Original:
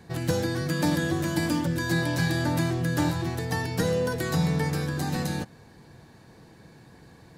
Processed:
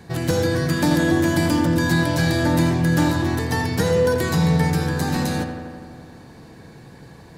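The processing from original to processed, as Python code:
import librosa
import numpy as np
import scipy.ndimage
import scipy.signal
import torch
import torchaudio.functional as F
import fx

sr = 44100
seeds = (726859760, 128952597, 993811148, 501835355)

p1 = np.clip(x, -10.0 ** (-27.0 / 20.0), 10.0 ** (-27.0 / 20.0))
p2 = x + F.gain(torch.from_numpy(p1), -8.5).numpy()
p3 = fx.echo_filtered(p2, sr, ms=84, feedback_pct=77, hz=3700.0, wet_db=-8.0)
y = F.gain(torch.from_numpy(p3), 3.5).numpy()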